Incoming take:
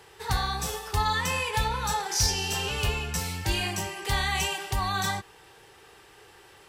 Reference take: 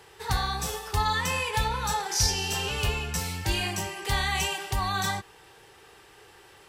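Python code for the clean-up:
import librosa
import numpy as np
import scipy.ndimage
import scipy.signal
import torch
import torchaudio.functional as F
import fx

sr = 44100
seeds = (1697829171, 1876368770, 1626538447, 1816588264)

y = fx.fix_declip(x, sr, threshold_db=-15.5)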